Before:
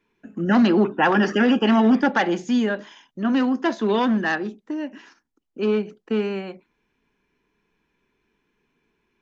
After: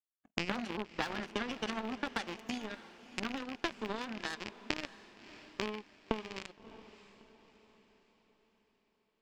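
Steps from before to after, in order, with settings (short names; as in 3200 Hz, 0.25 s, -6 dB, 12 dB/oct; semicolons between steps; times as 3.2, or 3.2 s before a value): rattling part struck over -34 dBFS, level -21 dBFS; HPF 77 Hz 6 dB/oct; high shelf 4900 Hz +7.5 dB; compressor 6:1, threshold -28 dBFS, peak gain reduction 14 dB; power-law curve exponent 3; on a send: diffused feedback echo 0.633 s, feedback 45%, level -15 dB; on the sum: gain +8 dB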